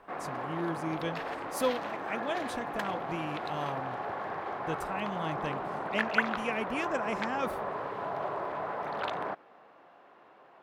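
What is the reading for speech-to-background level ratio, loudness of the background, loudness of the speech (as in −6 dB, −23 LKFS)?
−1.0 dB, −35.5 LKFS, −36.5 LKFS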